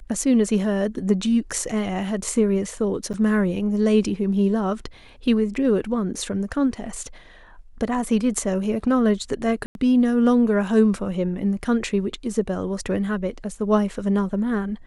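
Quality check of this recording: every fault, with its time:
3.13–3.14 s: dropout 8.1 ms
9.66–9.75 s: dropout 91 ms

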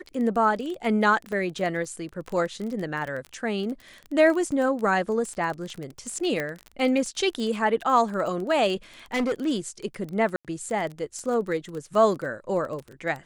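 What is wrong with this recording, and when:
crackle 21 per s -30 dBFS
1.32 s: dropout 2.7 ms
6.40 s: pop -15 dBFS
9.14–9.48 s: clipped -21.5 dBFS
10.36–10.45 s: dropout 87 ms

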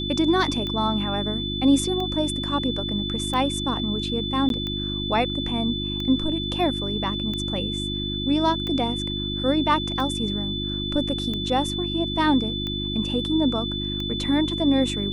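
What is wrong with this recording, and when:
hum 50 Hz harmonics 7 -30 dBFS
tick 45 rpm -18 dBFS
whine 3.5 kHz -29 dBFS
4.49–4.50 s: dropout 12 ms

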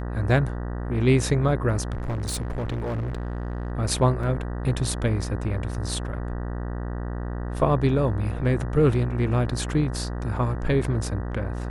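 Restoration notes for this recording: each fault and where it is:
buzz 60 Hz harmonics 32 -30 dBFS
1.93–3.72 s: clipped -24.5 dBFS
4.23 s: dropout 3.9 ms

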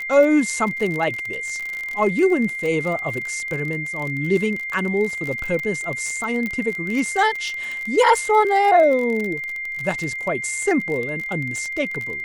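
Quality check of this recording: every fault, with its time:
crackle 35 per s -24 dBFS
whine 2.1 kHz -26 dBFS
6.46 s: pop -14 dBFS

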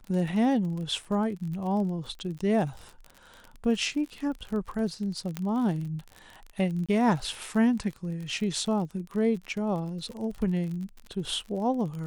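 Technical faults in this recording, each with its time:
crackle 37 per s -35 dBFS
5.37 s: pop -16 dBFS
6.86–6.89 s: dropout 26 ms

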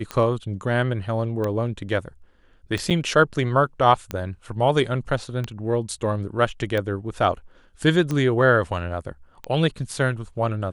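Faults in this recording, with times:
tick 45 rpm -14 dBFS
2.90–2.91 s: dropout 7.3 ms

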